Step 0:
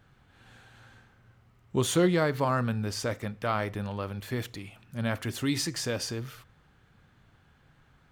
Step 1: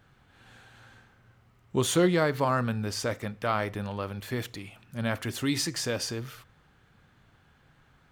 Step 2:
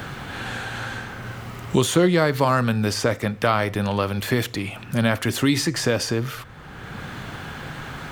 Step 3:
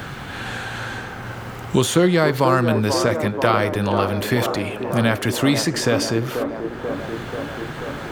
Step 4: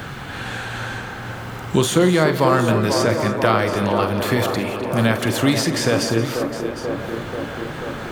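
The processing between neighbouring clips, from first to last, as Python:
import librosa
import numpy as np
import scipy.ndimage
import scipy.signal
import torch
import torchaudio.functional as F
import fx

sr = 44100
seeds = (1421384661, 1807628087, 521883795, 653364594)

y1 = fx.low_shelf(x, sr, hz=210.0, db=-3.0)
y1 = y1 * librosa.db_to_amplitude(1.5)
y2 = fx.band_squash(y1, sr, depth_pct=70)
y2 = y2 * librosa.db_to_amplitude(9.0)
y3 = fx.echo_wet_bandpass(y2, sr, ms=486, feedback_pct=75, hz=570.0, wet_db=-5)
y3 = y3 * librosa.db_to_amplitude(1.5)
y4 = fx.echo_multitap(y3, sr, ms=(44, 172, 256, 293, 762), db=(-12.5, -15.0, -15.5, -15.5, -13.0))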